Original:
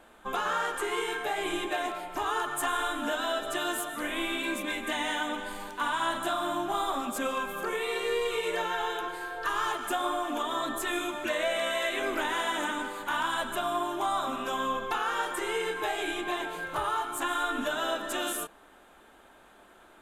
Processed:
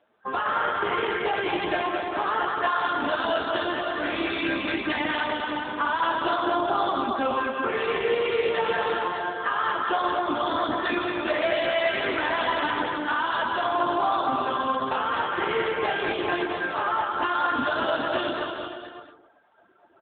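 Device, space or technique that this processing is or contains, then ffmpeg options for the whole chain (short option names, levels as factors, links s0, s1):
mobile call with aggressive noise cancelling: -filter_complex "[0:a]asplit=3[s0][s1][s2];[s0]afade=t=out:st=14.57:d=0.02[s3];[s1]adynamicequalizer=threshold=0.00501:dfrequency=1700:dqfactor=2.2:tfrequency=1700:tqfactor=2.2:attack=5:release=100:ratio=0.375:range=2:mode=cutabove:tftype=bell,afade=t=in:st=14.57:d=0.02,afade=t=out:st=15.1:d=0.02[s4];[s2]afade=t=in:st=15.1:d=0.02[s5];[s3][s4][s5]amix=inputs=3:normalize=0,highpass=100,aecho=1:1:220|407|566|701.1|815.9:0.631|0.398|0.251|0.158|0.1,afftdn=nr=17:nf=-45,volume=1.78" -ar 8000 -c:a libopencore_amrnb -b:a 7950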